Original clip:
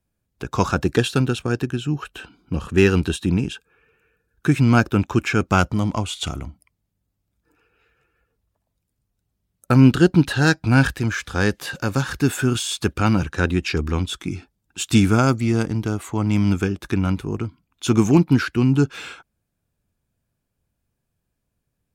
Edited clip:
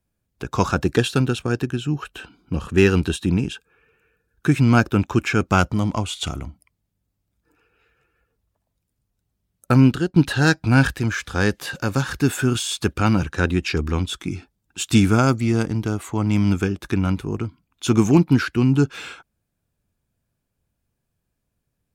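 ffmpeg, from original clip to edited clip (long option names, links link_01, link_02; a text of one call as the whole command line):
ffmpeg -i in.wav -filter_complex "[0:a]asplit=2[link_01][link_02];[link_01]atrim=end=10.16,asetpts=PTS-STARTPTS,afade=type=out:start_time=9.75:duration=0.41:silence=0.141254[link_03];[link_02]atrim=start=10.16,asetpts=PTS-STARTPTS,afade=type=in:duration=0.004:curve=hsin:silence=0.141254[link_04];[link_03][link_04]concat=n=2:v=0:a=1" out.wav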